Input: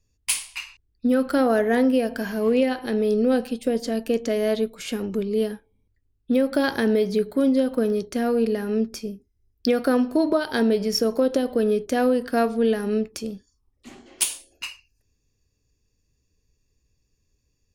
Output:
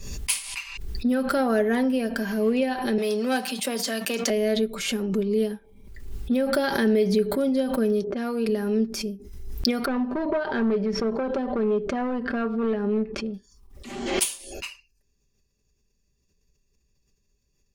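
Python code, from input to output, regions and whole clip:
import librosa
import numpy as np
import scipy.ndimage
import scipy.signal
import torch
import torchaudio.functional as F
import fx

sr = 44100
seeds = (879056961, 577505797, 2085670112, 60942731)

y = fx.chain(x, sr, fx.tilt_shelf(db=-9.5, hz=840.0),
    fx.leveller(passes=2),
    fx.cheby_ripple_highpass(hz=190.0, ripple_db=6), at=(2.98, 4.3))
y = fx.chain(y, sr, fx.env_lowpass(base_hz=520.0, full_db=-18.5),
    fx.highpass(hz=290.0, slope=6),
    fx.pre_swell(db_per_s=54.0), at=(8.04, 8.49))
y = fx.chain(y, sr, fx.clip_hard(threshold_db=-19.0),
    fx.lowpass(hz=2100.0, slope=12), at=(9.85, 13.34))
y = y + 0.56 * np.pad(y, (int(5.1 * sr / 1000.0), 0))[:len(y)]
y = fx.pre_swell(y, sr, db_per_s=52.0)
y = y * librosa.db_to_amplitude(-3.0)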